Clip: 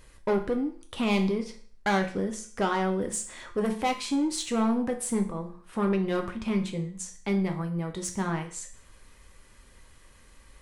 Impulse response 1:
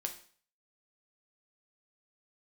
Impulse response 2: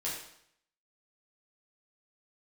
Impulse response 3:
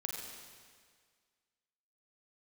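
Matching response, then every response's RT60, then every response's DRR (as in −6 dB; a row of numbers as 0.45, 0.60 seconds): 1; 0.45, 0.70, 1.8 seconds; 4.0, −7.0, −0.5 decibels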